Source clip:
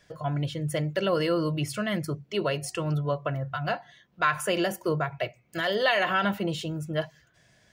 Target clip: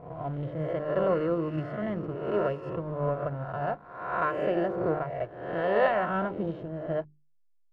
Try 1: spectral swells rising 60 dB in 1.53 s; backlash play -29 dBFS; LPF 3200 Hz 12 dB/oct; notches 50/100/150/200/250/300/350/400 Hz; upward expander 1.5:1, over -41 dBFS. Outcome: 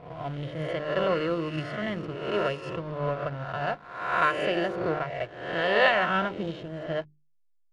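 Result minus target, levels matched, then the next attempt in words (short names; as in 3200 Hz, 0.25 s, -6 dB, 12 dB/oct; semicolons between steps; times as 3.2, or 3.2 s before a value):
4000 Hz band +13.5 dB
spectral swells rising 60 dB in 1.53 s; backlash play -29 dBFS; LPF 1100 Hz 12 dB/oct; notches 50/100/150/200/250/300/350/400 Hz; upward expander 1.5:1, over -41 dBFS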